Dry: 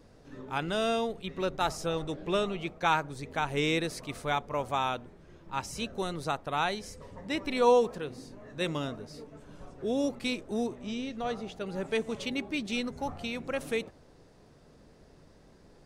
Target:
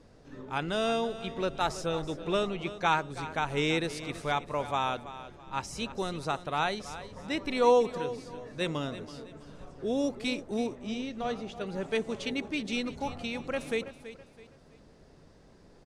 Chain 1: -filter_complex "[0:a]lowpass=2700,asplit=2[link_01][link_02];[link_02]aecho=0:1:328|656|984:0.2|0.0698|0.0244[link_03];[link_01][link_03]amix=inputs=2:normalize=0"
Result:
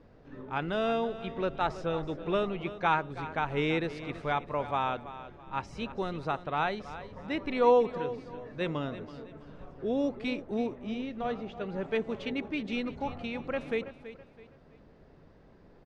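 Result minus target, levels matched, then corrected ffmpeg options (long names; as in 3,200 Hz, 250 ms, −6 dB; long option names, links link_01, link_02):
8,000 Hz band −15.5 dB
-filter_complex "[0:a]lowpass=10000,asplit=2[link_01][link_02];[link_02]aecho=0:1:328|656|984:0.2|0.0698|0.0244[link_03];[link_01][link_03]amix=inputs=2:normalize=0"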